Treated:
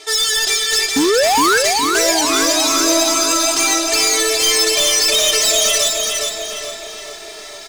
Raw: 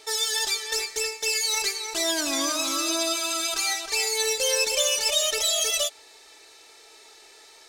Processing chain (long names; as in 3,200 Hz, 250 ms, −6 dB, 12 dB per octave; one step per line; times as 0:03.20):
low-pass filter 11,000 Hz
low-shelf EQ 410 Hz −4 dB
comb filter 2.9 ms, depth 96%
reversed playback
upward compression, threshold −38 dBFS
reversed playback
sound drawn into the spectrogram rise, 0:00.96–0:01.58, 260–1,700 Hz −17 dBFS
hard clipping −21.5 dBFS, distortion −8 dB
on a send: feedback echo with a low-pass in the loop 867 ms, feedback 41%, low-pass 2,100 Hz, level −8.5 dB
on the sum: feedback echo at a low word length 414 ms, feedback 35%, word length 9 bits, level −4 dB
level +8.5 dB